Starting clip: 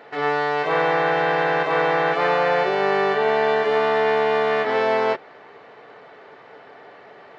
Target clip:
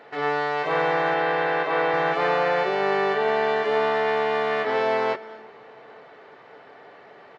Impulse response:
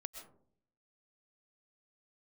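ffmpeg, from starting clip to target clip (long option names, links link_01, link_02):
-filter_complex "[0:a]asettb=1/sr,asplit=3[link_01][link_02][link_03];[link_01]atrim=end=1.144[link_04];[link_02]atrim=start=1.14:end=1.94,asetpts=PTS-STARTPTS,afade=type=in:duration=0.004:curve=qsin,afade=type=out:start_time=0.796:duration=0.004:curve=qsin,highpass=200,lowpass=5000[link_05];[link_03]atrim=start=1.936[link_06];[link_04][link_05]acrossfade=duration=0.004:curve1=hsin:curve2=qsin[link_07];[link_07][link_06]acrossfade=duration=0.004:curve1=qsin:curve2=hsin,asplit=2[link_08][link_09];[link_09]adelay=874.6,volume=-28dB,highshelf=frequency=4000:gain=-19.7[link_10];[link_08][link_10]amix=inputs=2:normalize=0,asplit=2[link_11][link_12];[1:a]atrim=start_sample=2205,asetrate=23373,aresample=44100[link_13];[link_12][link_13]afir=irnorm=-1:irlink=0,volume=-11.5dB[link_14];[link_11][link_14]amix=inputs=2:normalize=0,volume=-4.5dB"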